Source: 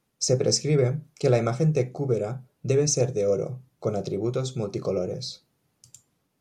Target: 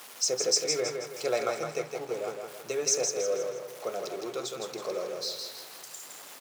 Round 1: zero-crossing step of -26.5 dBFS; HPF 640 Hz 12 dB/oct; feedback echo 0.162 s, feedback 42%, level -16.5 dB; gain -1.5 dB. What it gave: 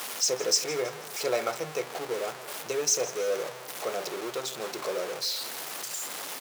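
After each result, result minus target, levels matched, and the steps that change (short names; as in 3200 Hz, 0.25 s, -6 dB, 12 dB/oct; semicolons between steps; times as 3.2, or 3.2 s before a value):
echo-to-direct -11.5 dB; zero-crossing step: distortion +10 dB
change: feedback echo 0.162 s, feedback 42%, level -5 dB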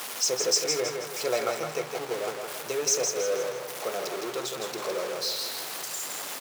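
zero-crossing step: distortion +10 dB
change: zero-crossing step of -37.5 dBFS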